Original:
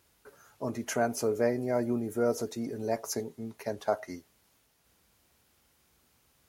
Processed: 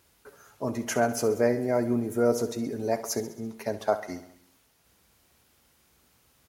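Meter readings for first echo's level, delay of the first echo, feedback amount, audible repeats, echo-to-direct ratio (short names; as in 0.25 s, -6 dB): -14.0 dB, 67 ms, 59%, 5, -12.0 dB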